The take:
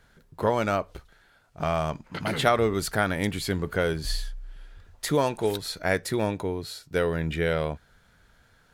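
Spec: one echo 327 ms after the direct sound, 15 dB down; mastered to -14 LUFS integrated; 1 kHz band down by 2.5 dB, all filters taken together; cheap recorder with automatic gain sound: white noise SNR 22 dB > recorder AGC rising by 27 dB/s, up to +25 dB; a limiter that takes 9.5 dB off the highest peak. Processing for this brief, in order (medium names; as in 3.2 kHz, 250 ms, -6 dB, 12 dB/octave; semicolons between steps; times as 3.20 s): peaking EQ 1 kHz -3.5 dB; peak limiter -18.5 dBFS; delay 327 ms -15 dB; white noise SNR 22 dB; recorder AGC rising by 27 dB/s, up to +25 dB; trim +16.5 dB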